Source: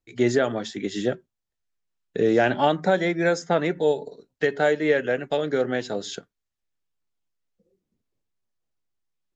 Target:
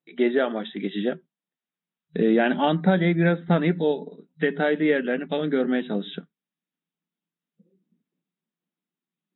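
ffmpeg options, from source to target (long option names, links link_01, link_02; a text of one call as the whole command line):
ffmpeg -i in.wav -af "asubboost=boost=6.5:cutoff=210,afftfilt=real='re*between(b*sr/4096,160,3900)':imag='im*between(b*sr/4096,160,3900)':win_size=4096:overlap=0.75" -ar 48000 -c:a libvorbis -b:a 64k out.ogg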